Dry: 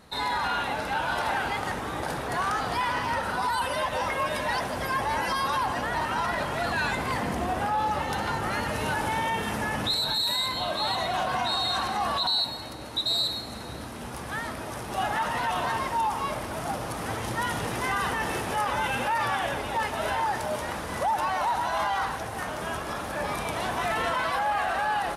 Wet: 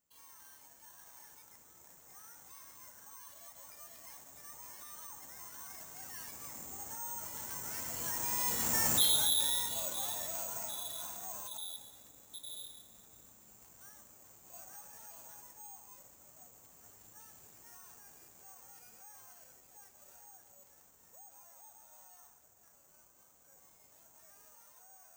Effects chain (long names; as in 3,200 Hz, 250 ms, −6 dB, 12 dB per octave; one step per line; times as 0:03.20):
source passing by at 0:08.98, 32 m/s, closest 11 metres
bad sample-rate conversion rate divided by 6×, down none, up zero stuff
level −8 dB